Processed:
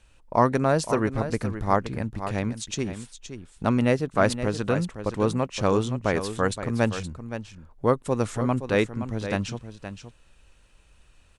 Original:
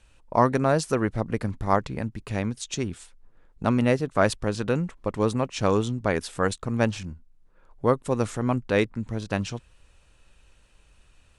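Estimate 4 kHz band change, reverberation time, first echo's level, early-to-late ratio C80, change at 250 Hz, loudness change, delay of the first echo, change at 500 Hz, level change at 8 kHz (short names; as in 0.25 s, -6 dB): +0.5 dB, none, -10.5 dB, none, +0.5 dB, 0.0 dB, 0.52 s, +0.5 dB, +0.5 dB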